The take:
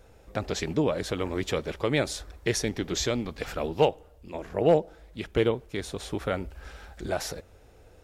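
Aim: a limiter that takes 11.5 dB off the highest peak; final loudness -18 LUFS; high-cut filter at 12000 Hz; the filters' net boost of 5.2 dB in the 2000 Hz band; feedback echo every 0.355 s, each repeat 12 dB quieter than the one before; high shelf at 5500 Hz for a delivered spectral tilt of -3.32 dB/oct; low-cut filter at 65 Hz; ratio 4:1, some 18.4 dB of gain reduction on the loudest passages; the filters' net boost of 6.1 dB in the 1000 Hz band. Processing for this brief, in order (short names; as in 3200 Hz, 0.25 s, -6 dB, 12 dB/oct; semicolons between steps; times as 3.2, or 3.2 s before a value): HPF 65 Hz; LPF 12000 Hz; bell 1000 Hz +7.5 dB; bell 2000 Hz +3 dB; high shelf 5500 Hz +9 dB; compressor 4:1, threshold -36 dBFS; limiter -28 dBFS; feedback echo 0.355 s, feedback 25%, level -12 dB; gain +23.5 dB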